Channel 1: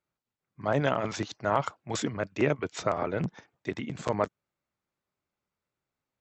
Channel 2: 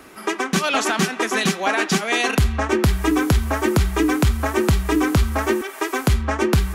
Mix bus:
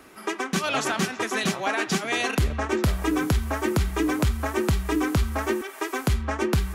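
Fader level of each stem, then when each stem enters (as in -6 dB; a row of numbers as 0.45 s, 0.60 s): -12.0 dB, -5.5 dB; 0.00 s, 0.00 s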